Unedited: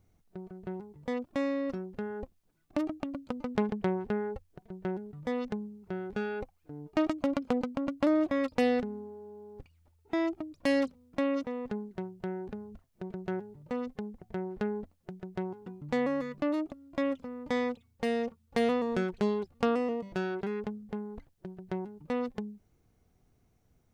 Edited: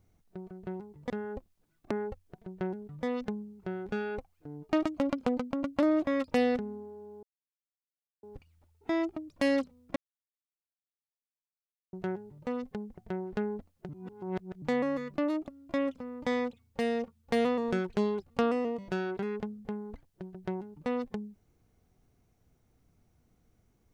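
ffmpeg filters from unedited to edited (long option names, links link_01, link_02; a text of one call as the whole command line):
ffmpeg -i in.wav -filter_complex "[0:a]asplit=8[link_01][link_02][link_03][link_04][link_05][link_06][link_07][link_08];[link_01]atrim=end=1.102[link_09];[link_02]atrim=start=1.958:end=2.772[link_10];[link_03]atrim=start=4.148:end=9.47,asetpts=PTS-STARTPTS,afade=type=out:start_time=5.318:duration=0.004:curve=hsin,apad=pad_dur=1[link_11];[link_04]atrim=start=9.47:end=11.2,asetpts=PTS-STARTPTS,afade=type=in:duration=0.004:curve=hsin,afade=type=out:start_time=1.726:duration=0.004:curve=hsin[link_12];[link_05]atrim=start=11.2:end=13.17,asetpts=PTS-STARTPTS,volume=0[link_13];[link_06]atrim=start=13.17:end=15.132,asetpts=PTS-STARTPTS,afade=type=in:duration=0.004:curve=hsin[link_14];[link_07]atrim=start=15.128:end=15.862,asetpts=PTS-STARTPTS,areverse[link_15];[link_08]atrim=start=15.858[link_16];[link_09][link_10]acrossfade=duration=0.004:curve1=hsin:curve2=hsin[link_17];[link_11][link_12][link_13][link_14]concat=n=4:v=0:a=1[link_18];[link_17][link_18]acrossfade=duration=0.004:curve1=hsin:curve2=hsin[link_19];[link_19][link_15]acrossfade=duration=0.004:curve1=hsin:curve2=hsin[link_20];[link_20][link_16]acrossfade=duration=0.004:curve1=hsin:curve2=hsin" out.wav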